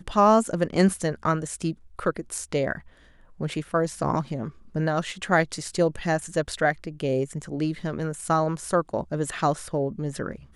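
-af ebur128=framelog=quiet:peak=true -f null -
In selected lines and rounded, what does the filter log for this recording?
Integrated loudness:
  I:         -26.2 LUFS
  Threshold: -36.3 LUFS
Loudness range:
  LRA:         3.0 LU
  Threshold: -47.0 LUFS
  LRA low:   -29.0 LUFS
  LRA high:  -26.0 LUFS
True peak:
  Peak:       -6.3 dBFS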